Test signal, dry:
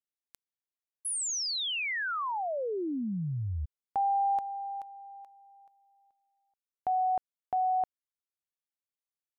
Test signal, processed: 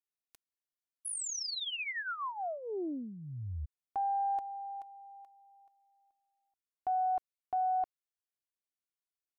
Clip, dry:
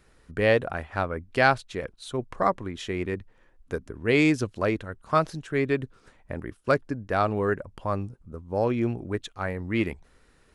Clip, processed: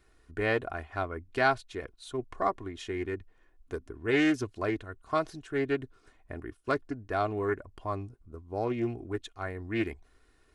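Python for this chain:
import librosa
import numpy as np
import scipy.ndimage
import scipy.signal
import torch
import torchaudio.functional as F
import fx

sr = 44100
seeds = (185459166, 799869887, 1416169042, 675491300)

y = x + 0.56 * np.pad(x, (int(2.8 * sr / 1000.0), 0))[:len(x)]
y = fx.doppler_dist(y, sr, depth_ms=0.19)
y = F.gain(torch.from_numpy(y), -6.5).numpy()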